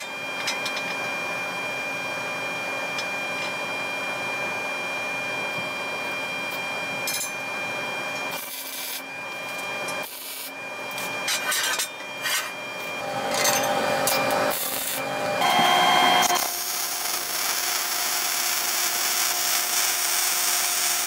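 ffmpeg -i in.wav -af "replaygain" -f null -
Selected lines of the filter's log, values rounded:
track_gain = +6.0 dB
track_peak = 0.366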